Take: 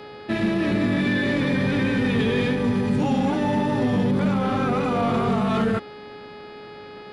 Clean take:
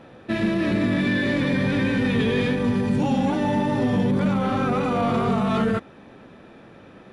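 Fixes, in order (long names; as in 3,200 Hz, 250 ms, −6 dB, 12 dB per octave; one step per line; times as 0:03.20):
clipped peaks rebuilt −14.5 dBFS
hum removal 418.9 Hz, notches 12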